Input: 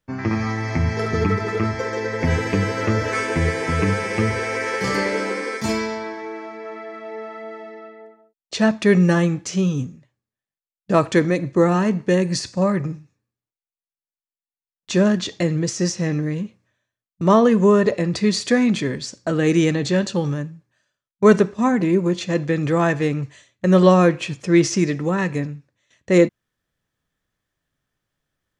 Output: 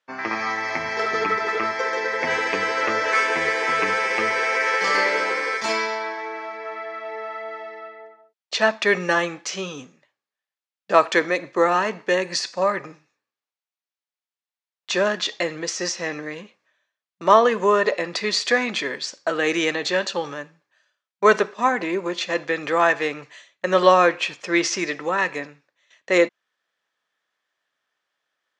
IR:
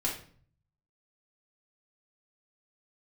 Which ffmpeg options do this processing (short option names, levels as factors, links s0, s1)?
-af "highpass=670,lowpass=5100,volume=1.78"